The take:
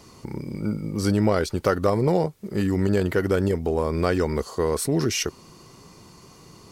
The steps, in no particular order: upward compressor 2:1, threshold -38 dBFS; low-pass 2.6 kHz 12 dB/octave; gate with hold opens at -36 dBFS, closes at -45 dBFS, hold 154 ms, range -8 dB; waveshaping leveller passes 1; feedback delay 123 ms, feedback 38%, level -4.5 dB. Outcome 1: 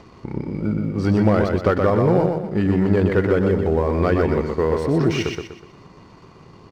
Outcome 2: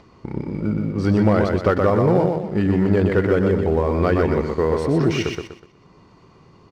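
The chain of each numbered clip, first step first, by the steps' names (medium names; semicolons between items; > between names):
low-pass > waveshaping leveller > feedback delay > upward compressor > gate with hold; low-pass > gate with hold > feedback delay > waveshaping leveller > upward compressor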